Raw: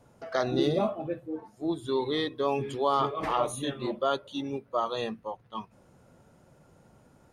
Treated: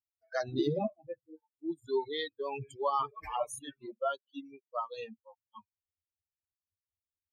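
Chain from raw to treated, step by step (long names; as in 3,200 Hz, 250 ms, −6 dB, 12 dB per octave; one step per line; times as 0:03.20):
spectral dynamics exaggerated over time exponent 3
0:03.59–0:04.70: bass and treble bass −9 dB, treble −13 dB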